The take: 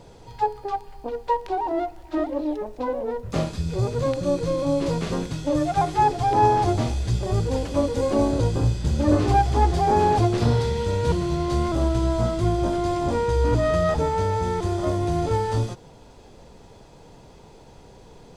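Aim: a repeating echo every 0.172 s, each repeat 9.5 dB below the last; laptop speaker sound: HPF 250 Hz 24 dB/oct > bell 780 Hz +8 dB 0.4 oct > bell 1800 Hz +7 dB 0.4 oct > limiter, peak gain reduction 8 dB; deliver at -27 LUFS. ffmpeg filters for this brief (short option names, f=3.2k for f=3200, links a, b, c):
-af "highpass=f=250:w=0.5412,highpass=f=250:w=1.3066,equalizer=f=780:t=o:w=0.4:g=8,equalizer=f=1.8k:t=o:w=0.4:g=7,aecho=1:1:172|344|516|688:0.335|0.111|0.0365|0.012,volume=-4.5dB,alimiter=limit=-16dB:level=0:latency=1"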